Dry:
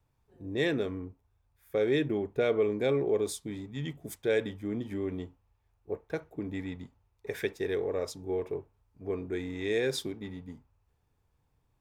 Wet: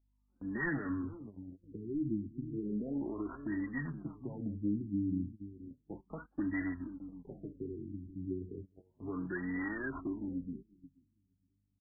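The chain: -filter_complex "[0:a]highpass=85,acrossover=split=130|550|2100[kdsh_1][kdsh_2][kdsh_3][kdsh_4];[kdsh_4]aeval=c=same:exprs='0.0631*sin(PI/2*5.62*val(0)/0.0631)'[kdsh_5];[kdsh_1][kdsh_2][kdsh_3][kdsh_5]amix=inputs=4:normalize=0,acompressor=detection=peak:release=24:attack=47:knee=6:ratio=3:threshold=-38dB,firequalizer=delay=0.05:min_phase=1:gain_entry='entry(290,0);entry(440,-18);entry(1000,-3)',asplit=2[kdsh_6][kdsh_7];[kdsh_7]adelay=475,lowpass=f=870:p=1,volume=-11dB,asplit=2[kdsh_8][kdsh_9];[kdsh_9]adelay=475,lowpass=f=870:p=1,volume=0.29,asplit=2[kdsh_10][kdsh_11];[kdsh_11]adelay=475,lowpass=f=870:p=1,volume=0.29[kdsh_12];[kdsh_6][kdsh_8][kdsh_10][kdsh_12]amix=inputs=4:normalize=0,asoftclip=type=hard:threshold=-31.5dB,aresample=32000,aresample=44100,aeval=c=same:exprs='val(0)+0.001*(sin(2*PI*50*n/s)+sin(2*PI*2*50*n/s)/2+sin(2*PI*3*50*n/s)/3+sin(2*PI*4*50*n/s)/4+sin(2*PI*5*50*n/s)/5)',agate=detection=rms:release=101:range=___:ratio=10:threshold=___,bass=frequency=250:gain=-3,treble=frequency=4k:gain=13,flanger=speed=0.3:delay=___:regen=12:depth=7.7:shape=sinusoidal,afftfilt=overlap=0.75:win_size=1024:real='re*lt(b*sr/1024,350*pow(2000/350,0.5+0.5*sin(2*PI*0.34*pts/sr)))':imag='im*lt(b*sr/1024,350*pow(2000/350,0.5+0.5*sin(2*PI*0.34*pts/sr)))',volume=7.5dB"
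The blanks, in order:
-17dB, -49dB, 2.9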